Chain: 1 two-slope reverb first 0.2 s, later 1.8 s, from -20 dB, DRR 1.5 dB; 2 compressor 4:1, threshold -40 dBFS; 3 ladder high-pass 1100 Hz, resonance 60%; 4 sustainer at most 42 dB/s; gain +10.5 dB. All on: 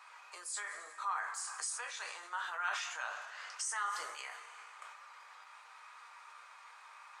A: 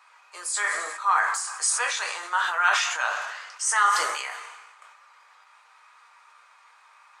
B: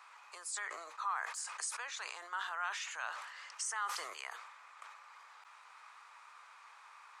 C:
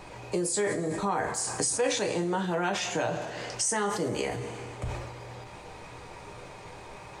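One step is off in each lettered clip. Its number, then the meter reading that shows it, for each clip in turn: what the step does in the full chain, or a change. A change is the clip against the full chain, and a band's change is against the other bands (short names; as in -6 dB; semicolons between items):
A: 2, mean gain reduction 9.0 dB; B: 1, crest factor change -2.5 dB; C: 3, 500 Hz band +18.5 dB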